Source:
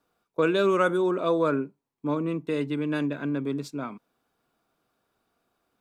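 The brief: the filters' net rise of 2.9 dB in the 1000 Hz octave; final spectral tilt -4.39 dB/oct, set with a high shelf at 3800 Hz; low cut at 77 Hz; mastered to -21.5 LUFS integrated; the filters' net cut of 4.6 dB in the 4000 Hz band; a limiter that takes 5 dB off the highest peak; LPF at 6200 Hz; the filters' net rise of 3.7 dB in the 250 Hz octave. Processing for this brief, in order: HPF 77 Hz; LPF 6200 Hz; bell 250 Hz +5 dB; bell 1000 Hz +3.5 dB; high shelf 3800 Hz +6 dB; bell 4000 Hz -8.5 dB; gain +4 dB; limiter -10.5 dBFS

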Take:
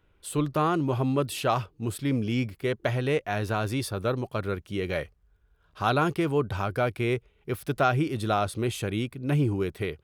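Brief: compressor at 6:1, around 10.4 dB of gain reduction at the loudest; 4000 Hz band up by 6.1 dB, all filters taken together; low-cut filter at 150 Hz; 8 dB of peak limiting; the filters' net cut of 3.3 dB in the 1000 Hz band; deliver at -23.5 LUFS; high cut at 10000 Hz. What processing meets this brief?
HPF 150 Hz; LPF 10000 Hz; bell 1000 Hz -5.5 dB; bell 4000 Hz +8 dB; compressor 6:1, threshold -32 dBFS; gain +14.5 dB; limiter -10.5 dBFS

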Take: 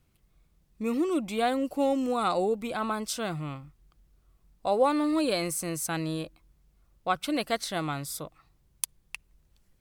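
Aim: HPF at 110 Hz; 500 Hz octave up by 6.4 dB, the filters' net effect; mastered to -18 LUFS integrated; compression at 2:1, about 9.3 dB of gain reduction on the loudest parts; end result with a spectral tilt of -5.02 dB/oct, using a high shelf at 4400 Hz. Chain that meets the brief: HPF 110 Hz; bell 500 Hz +7.5 dB; high shelf 4400 Hz -8.5 dB; compressor 2:1, threshold -29 dBFS; gain +13 dB

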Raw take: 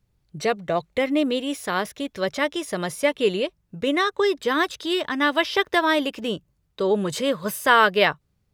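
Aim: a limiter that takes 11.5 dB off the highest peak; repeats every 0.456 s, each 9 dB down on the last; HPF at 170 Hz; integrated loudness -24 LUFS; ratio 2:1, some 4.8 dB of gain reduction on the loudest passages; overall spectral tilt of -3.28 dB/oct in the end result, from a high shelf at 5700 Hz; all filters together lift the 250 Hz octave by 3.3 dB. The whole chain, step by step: HPF 170 Hz; bell 250 Hz +5 dB; high shelf 5700 Hz -7.5 dB; compressor 2:1, threshold -20 dBFS; limiter -20 dBFS; feedback echo 0.456 s, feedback 35%, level -9 dB; gain +5 dB

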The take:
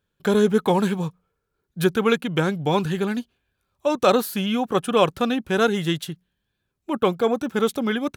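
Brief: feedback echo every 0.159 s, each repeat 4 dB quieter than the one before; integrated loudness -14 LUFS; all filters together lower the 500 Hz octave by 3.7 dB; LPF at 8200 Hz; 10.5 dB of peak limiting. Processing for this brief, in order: LPF 8200 Hz; bell 500 Hz -4.5 dB; limiter -16.5 dBFS; feedback echo 0.159 s, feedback 63%, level -4 dB; gain +11.5 dB

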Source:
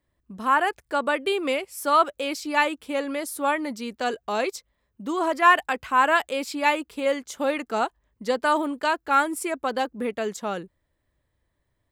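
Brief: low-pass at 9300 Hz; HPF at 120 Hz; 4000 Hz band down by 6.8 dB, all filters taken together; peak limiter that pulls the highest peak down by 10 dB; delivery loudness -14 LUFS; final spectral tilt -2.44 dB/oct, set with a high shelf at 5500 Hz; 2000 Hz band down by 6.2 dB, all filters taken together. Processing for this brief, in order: HPF 120 Hz; LPF 9300 Hz; bell 2000 Hz -6.5 dB; bell 4000 Hz -3 dB; high shelf 5500 Hz -9 dB; gain +15 dB; limiter -2.5 dBFS

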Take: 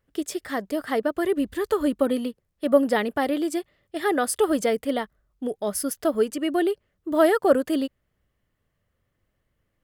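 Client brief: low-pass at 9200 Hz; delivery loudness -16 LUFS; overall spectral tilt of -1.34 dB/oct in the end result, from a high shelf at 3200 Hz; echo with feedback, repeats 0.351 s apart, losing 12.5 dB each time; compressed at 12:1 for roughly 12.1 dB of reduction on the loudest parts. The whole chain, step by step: LPF 9200 Hz; high shelf 3200 Hz -8.5 dB; compressor 12:1, threshold -24 dBFS; feedback echo 0.351 s, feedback 24%, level -12.5 dB; gain +14.5 dB

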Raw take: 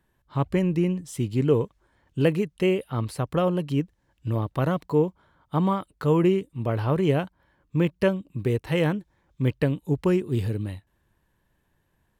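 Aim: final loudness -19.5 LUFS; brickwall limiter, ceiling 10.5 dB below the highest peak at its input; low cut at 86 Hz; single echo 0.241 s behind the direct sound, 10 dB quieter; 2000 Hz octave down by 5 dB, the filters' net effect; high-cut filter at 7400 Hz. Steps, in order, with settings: HPF 86 Hz; LPF 7400 Hz; bell 2000 Hz -6.5 dB; limiter -19 dBFS; echo 0.241 s -10 dB; gain +10.5 dB

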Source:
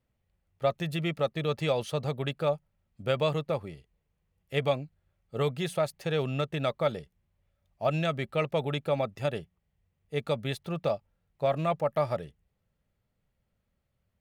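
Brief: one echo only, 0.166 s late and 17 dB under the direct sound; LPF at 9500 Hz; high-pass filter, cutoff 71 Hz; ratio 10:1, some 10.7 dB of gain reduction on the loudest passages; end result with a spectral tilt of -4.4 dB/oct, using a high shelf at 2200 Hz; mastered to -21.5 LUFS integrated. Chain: HPF 71 Hz; LPF 9500 Hz; high shelf 2200 Hz +5.5 dB; compressor 10:1, threshold -32 dBFS; echo 0.166 s -17 dB; gain +16.5 dB

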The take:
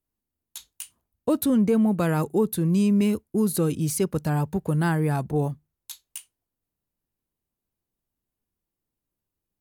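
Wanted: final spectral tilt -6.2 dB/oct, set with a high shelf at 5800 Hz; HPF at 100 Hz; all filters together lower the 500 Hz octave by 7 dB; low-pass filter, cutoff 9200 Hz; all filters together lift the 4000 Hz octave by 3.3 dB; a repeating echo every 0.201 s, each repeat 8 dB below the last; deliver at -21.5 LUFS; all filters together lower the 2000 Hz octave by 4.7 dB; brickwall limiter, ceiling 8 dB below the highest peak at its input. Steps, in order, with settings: HPF 100 Hz; LPF 9200 Hz; bell 500 Hz -8.5 dB; bell 2000 Hz -7.5 dB; bell 4000 Hz +8.5 dB; high shelf 5800 Hz -5.5 dB; limiter -22.5 dBFS; feedback echo 0.201 s, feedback 40%, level -8 dB; gain +8.5 dB

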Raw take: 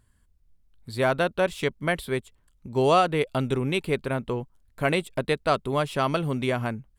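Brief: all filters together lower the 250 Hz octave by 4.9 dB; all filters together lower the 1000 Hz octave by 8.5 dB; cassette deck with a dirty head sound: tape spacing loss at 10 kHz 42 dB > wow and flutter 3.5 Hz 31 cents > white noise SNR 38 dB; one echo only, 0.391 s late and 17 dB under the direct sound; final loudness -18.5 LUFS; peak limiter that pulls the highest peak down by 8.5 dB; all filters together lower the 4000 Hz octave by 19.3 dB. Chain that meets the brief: bell 250 Hz -5 dB; bell 1000 Hz -6.5 dB; bell 4000 Hz -7 dB; limiter -21.5 dBFS; tape spacing loss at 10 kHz 42 dB; echo 0.391 s -17 dB; wow and flutter 3.5 Hz 31 cents; white noise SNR 38 dB; gain +16.5 dB

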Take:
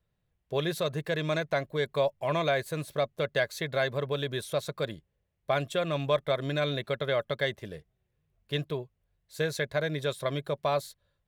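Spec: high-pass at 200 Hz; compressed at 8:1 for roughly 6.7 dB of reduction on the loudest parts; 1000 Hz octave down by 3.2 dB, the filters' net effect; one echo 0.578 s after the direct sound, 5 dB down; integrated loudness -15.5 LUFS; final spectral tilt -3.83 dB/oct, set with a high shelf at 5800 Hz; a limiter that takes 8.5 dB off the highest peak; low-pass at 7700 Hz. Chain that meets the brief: HPF 200 Hz; LPF 7700 Hz; bell 1000 Hz -5 dB; high shelf 5800 Hz +9 dB; compressor 8:1, threshold -30 dBFS; limiter -27 dBFS; echo 0.578 s -5 dB; gain +22.5 dB

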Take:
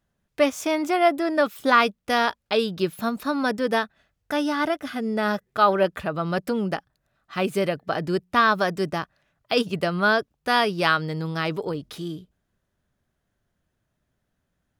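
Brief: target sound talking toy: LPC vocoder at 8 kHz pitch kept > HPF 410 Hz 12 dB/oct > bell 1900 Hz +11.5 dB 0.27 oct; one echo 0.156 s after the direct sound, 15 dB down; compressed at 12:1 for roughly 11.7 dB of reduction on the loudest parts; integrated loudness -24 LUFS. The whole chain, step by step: compressor 12:1, threshold -25 dBFS; echo 0.156 s -15 dB; LPC vocoder at 8 kHz pitch kept; HPF 410 Hz 12 dB/oct; bell 1900 Hz +11.5 dB 0.27 oct; gain +8 dB

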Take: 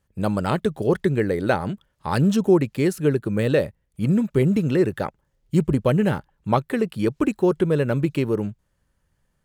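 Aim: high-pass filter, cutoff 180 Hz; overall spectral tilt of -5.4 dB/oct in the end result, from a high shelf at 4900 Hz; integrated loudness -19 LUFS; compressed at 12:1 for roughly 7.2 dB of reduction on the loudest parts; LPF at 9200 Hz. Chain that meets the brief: HPF 180 Hz; LPF 9200 Hz; high shelf 4900 Hz -4 dB; compressor 12:1, threshold -21 dBFS; gain +9 dB

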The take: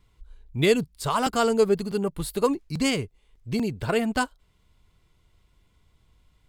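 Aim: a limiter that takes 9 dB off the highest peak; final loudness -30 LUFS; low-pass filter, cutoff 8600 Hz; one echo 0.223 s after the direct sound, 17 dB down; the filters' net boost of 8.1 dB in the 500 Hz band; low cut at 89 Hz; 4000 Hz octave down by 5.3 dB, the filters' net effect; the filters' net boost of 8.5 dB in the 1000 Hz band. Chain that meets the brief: HPF 89 Hz; LPF 8600 Hz; bell 500 Hz +8 dB; bell 1000 Hz +8.5 dB; bell 4000 Hz -8 dB; limiter -10.5 dBFS; echo 0.223 s -17 dB; gain -7.5 dB

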